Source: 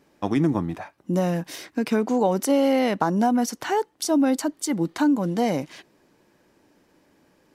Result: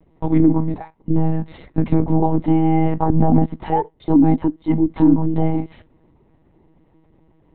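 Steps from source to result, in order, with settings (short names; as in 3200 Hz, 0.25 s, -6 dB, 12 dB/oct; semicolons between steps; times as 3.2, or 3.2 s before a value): treble ducked by the level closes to 2200 Hz, closed at -18 dBFS; reverb, pre-delay 3 ms, DRR 19.5 dB; monotone LPC vocoder at 8 kHz 160 Hz; gain -11.5 dB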